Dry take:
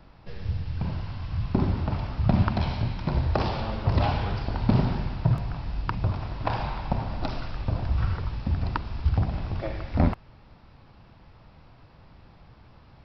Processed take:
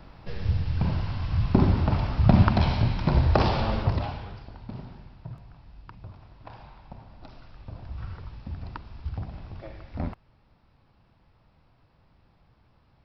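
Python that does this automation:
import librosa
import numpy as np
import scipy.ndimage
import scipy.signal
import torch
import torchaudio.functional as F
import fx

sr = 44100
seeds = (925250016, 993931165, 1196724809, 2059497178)

y = fx.gain(x, sr, db=fx.line((3.8, 4.0), (4.03, -7.5), (4.69, -17.5), (7.14, -17.5), (8.2, -10.0)))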